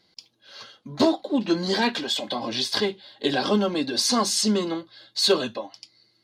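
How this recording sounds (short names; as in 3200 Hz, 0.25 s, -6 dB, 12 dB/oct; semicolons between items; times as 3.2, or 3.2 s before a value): noise floor -66 dBFS; spectral tilt -3.0 dB/oct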